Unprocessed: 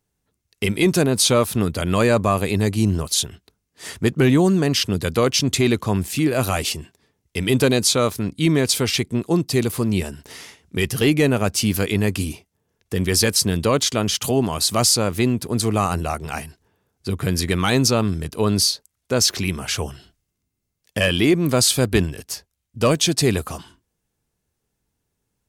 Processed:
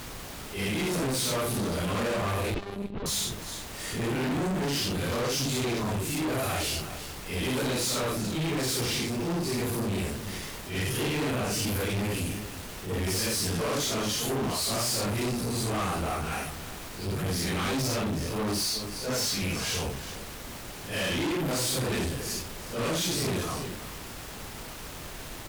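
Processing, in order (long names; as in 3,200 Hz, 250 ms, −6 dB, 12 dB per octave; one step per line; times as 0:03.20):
random phases in long frames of 200 ms
background noise pink −39 dBFS
0:02.54–0:03.06: one-pitch LPC vocoder at 8 kHz 200 Hz
on a send: single-tap delay 362 ms −17.5 dB
on the sum: tube saturation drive 27 dB, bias 0.25
level that may rise only so fast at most 110 dB per second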